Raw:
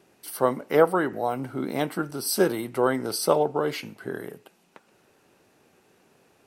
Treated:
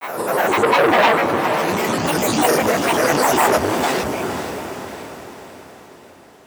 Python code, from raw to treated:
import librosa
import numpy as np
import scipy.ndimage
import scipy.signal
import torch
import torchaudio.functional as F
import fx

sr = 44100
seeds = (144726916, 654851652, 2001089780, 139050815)

p1 = fx.spec_swells(x, sr, rise_s=2.52)
p2 = fx.rev_gated(p1, sr, seeds[0], gate_ms=290, shape='rising', drr_db=-5.5)
p3 = fx.granulator(p2, sr, seeds[1], grain_ms=100.0, per_s=20.0, spray_ms=100.0, spread_st=12)
p4 = p3 + fx.echo_diffused(p3, sr, ms=478, feedback_pct=51, wet_db=-9, dry=0)
p5 = fx.transformer_sat(p4, sr, knee_hz=1400.0)
y = p5 * 10.0 ** (-1.0 / 20.0)